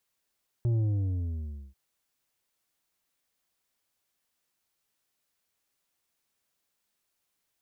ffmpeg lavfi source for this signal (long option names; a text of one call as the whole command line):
ffmpeg -f lavfi -i "aevalsrc='0.0631*clip((1.09-t)/0.98,0,1)*tanh(2.24*sin(2*PI*120*1.09/log(65/120)*(exp(log(65/120)*t/1.09)-1)))/tanh(2.24)':duration=1.09:sample_rate=44100" out.wav